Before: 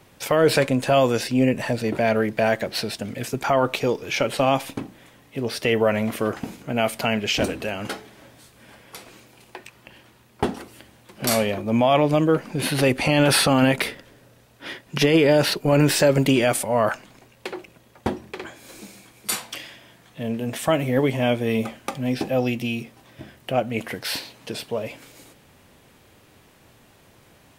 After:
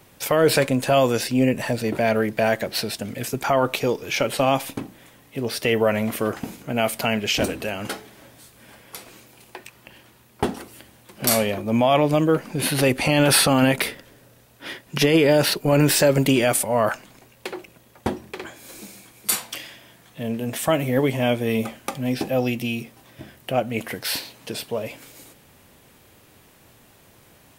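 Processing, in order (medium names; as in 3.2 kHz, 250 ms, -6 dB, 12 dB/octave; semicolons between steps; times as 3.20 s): treble shelf 10 kHz +9.5 dB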